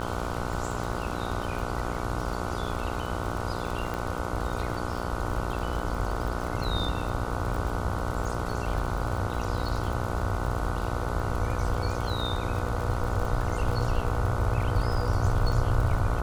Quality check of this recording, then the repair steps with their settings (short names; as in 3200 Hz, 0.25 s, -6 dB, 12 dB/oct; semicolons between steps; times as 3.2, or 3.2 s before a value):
buzz 60 Hz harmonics 25 -33 dBFS
crackle 55/s -32 dBFS
3.94 pop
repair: de-click; de-hum 60 Hz, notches 25